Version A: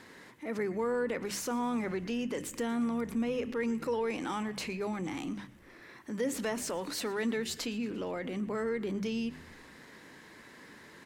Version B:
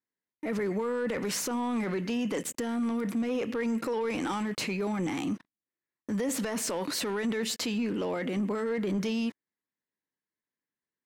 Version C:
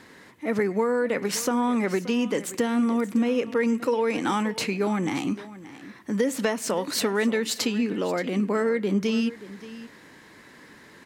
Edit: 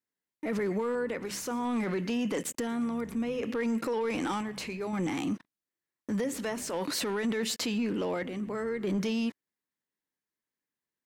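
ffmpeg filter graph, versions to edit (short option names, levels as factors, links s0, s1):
-filter_complex "[0:a]asplit=5[s0][s1][s2][s3][s4];[1:a]asplit=6[s5][s6][s7][s8][s9][s10];[s5]atrim=end=0.952[s11];[s0]atrim=start=0.948:end=1.652[s12];[s6]atrim=start=1.648:end=2.672[s13];[s1]atrim=start=2.668:end=3.432[s14];[s7]atrim=start=3.428:end=4.412[s15];[s2]atrim=start=4.408:end=4.932[s16];[s8]atrim=start=4.928:end=6.242[s17];[s3]atrim=start=6.238:end=6.732[s18];[s9]atrim=start=6.728:end=8.232[s19];[s4]atrim=start=8.228:end=8.842[s20];[s10]atrim=start=8.838[s21];[s11][s12]acrossfade=d=0.004:c1=hsin:c2=hsin[s22];[s22][s13]acrossfade=d=0.004:c1=hsin:c2=hsin[s23];[s23][s14]acrossfade=d=0.004:c1=hsin:c2=hsin[s24];[s24][s15]acrossfade=d=0.004:c1=hsin:c2=hsin[s25];[s25][s16]acrossfade=d=0.004:c1=hsin:c2=hsin[s26];[s26][s17]acrossfade=d=0.004:c1=hsin:c2=hsin[s27];[s27][s18]acrossfade=d=0.004:c1=hsin:c2=hsin[s28];[s28][s19]acrossfade=d=0.004:c1=hsin:c2=hsin[s29];[s29][s20]acrossfade=d=0.004:c1=hsin:c2=hsin[s30];[s30][s21]acrossfade=d=0.004:c1=hsin:c2=hsin"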